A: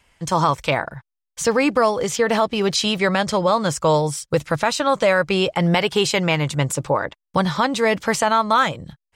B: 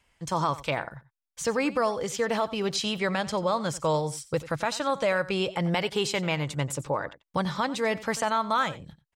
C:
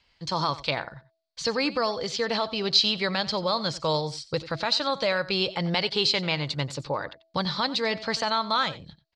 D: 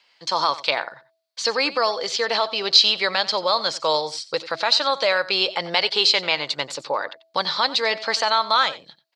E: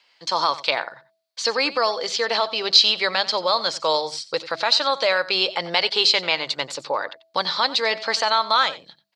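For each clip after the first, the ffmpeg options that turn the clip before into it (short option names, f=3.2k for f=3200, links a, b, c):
-af "aecho=1:1:90:0.141,volume=-8.5dB"
-af "lowpass=f=4.4k:t=q:w=6.8,bandreject=f=327.3:t=h:w=4,bandreject=f=654.6:t=h:w=4,volume=-1dB"
-af "highpass=490,volume=6.5dB"
-af "bandreject=f=50:t=h:w=6,bandreject=f=100:t=h:w=6,bandreject=f=150:t=h:w=6,bandreject=f=200:t=h:w=6"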